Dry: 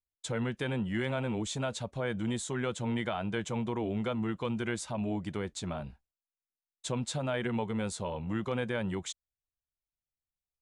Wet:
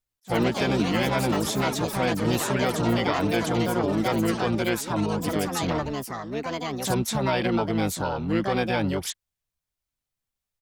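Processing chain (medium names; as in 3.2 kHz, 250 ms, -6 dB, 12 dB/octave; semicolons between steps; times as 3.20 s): harmony voices -12 st -14 dB, +7 st -2 dB; ever faster or slower copies 108 ms, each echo +5 st, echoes 3, each echo -6 dB; attacks held to a fixed rise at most 520 dB/s; trim +6 dB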